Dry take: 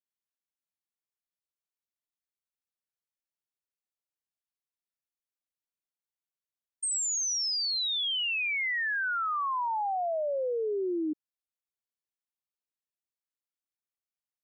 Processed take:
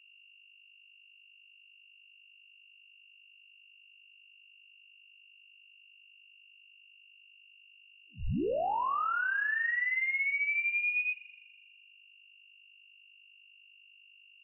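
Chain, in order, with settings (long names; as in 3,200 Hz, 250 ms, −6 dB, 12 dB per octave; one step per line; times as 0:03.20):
backwards echo 33 ms −6 dB
mains hum 50 Hz, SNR 25 dB
spring reverb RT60 1.6 s, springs 41 ms, chirp 65 ms, DRR 16 dB
voice inversion scrambler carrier 2,800 Hz
level −2 dB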